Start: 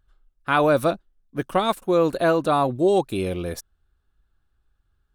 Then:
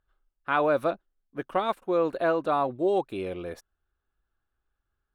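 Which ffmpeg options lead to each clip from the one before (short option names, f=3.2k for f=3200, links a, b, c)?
-af "bass=f=250:g=-9,treble=f=4k:g=-14,volume=-4.5dB"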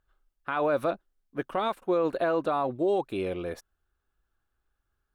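-af "alimiter=limit=-20dB:level=0:latency=1:release=46,volume=2dB"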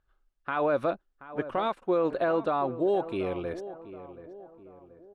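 -filter_complex "[0:a]lowpass=8.8k,highshelf=f=5.7k:g=-8.5,asplit=2[a][b];[b]adelay=729,lowpass=f=1.4k:p=1,volume=-13.5dB,asplit=2[c][d];[d]adelay=729,lowpass=f=1.4k:p=1,volume=0.47,asplit=2[e][f];[f]adelay=729,lowpass=f=1.4k:p=1,volume=0.47,asplit=2[g][h];[h]adelay=729,lowpass=f=1.4k:p=1,volume=0.47,asplit=2[i][j];[j]adelay=729,lowpass=f=1.4k:p=1,volume=0.47[k];[a][c][e][g][i][k]amix=inputs=6:normalize=0"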